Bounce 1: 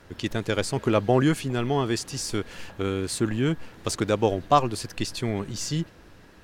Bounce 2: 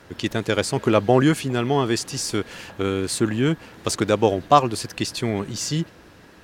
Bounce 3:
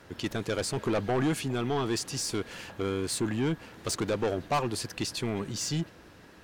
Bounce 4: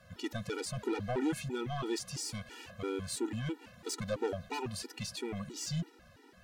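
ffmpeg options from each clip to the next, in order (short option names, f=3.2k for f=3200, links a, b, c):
-af "highpass=f=100:p=1,volume=4.5dB"
-af "asoftclip=type=tanh:threshold=-18dB,volume=-4.5dB"
-af "afftfilt=real='re*gt(sin(2*PI*3*pts/sr)*(1-2*mod(floor(b*sr/1024/250),2)),0)':imag='im*gt(sin(2*PI*3*pts/sr)*(1-2*mod(floor(b*sr/1024/250),2)),0)':win_size=1024:overlap=0.75,volume=-3.5dB"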